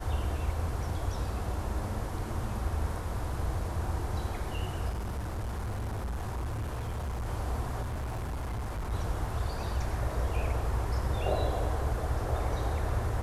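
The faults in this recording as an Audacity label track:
4.890000	7.260000	clipped -31 dBFS
7.810000	8.930000	clipped -31.5 dBFS

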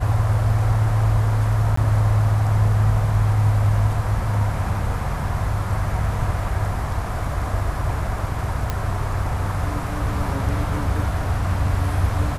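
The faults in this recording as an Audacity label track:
1.760000	1.770000	gap 14 ms
8.700000	8.700000	pop -9 dBFS

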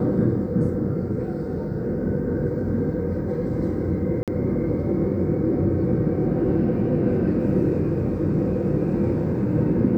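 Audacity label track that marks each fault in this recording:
4.230000	4.280000	gap 47 ms

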